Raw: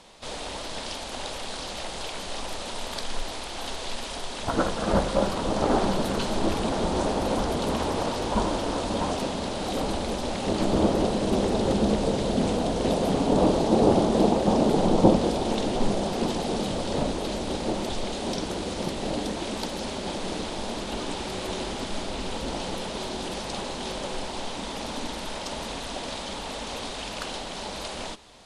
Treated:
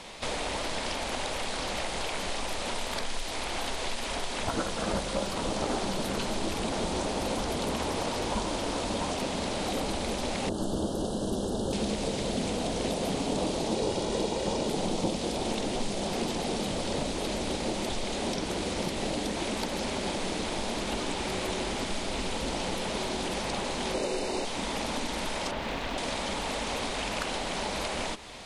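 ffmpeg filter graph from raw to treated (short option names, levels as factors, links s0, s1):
-filter_complex "[0:a]asettb=1/sr,asplit=3[s0][s1][s2];[s0]atrim=end=10.494[s3];[s1]atrim=start=10.49:end=11.73,asetpts=PTS-STARTPTS,afade=t=in:d=0.004:c=qsin,afade=t=out:st=1.236:d=0.004:c=qsin,asuperstop=centerf=2200:order=12:qfactor=2,equalizer=f=3500:w=0.38:g=-12.5[s4];[s2]atrim=start=11.726[s5];[s3][s4]acrossfade=d=0.004:c1=hsin:c2=qsin[s6];[s6][s5]acrossfade=d=0.004:c1=qsin:c2=hsin,asettb=1/sr,asplit=3[s7][s8][s9];[s7]atrim=end=13.754[s10];[s8]atrim=start=13.75:end=14.68,asetpts=PTS-STARTPTS,afade=t=in:d=0.004:c=qsin,afade=t=out:st=0.926:d=0.004:c=qsin,lowpass=9700,aecho=1:1:2.1:0.37,atrim=end_sample=41013[s11];[s9]atrim=start=14.676[s12];[s10][s11]acrossfade=d=0.004:c1=hsin:c2=qsin[s13];[s13][s12]acrossfade=d=0.004:c1=qsin:c2=hsin,asettb=1/sr,asplit=3[s14][s15][s16];[s14]atrim=end=23.944[s17];[s15]atrim=start=23.94:end=24.45,asetpts=PTS-STARTPTS,afade=t=in:d=0.004:c=qsin,afade=t=out:st=0.506:d=0.004:c=qsin,asuperstop=centerf=3300:order=20:qfactor=7.2,equalizer=f=400:w=1:g=12[s18];[s16]atrim=start=24.446[s19];[s17][s18]acrossfade=d=0.004:c1=hsin:c2=qsin[s20];[s20][s19]acrossfade=d=0.004:c1=qsin:c2=hsin,asettb=1/sr,asplit=3[s21][s22][s23];[s21]atrim=end=25.514[s24];[s22]atrim=start=25.51:end=25.98,asetpts=PTS-STARTPTS,afade=t=in:d=0.004:c=qsin,afade=t=out:st=0.466:d=0.004:c=qsin,lowpass=3100,aeval=exprs='clip(val(0),-1,0.015)':c=same[s25];[s23]atrim=start=25.976[s26];[s24][s25]acrossfade=d=0.004:c1=hsin:c2=qsin[s27];[s27][s26]acrossfade=d=0.004:c1=qsin:c2=hsin,equalizer=f=2200:t=o:w=0.65:g=5,acrossover=split=2400|5200[s28][s29][s30];[s28]acompressor=threshold=0.0141:ratio=4[s31];[s29]acompressor=threshold=0.00316:ratio=4[s32];[s30]acompressor=threshold=0.00355:ratio=4[s33];[s31][s32][s33]amix=inputs=3:normalize=0,volume=2.11"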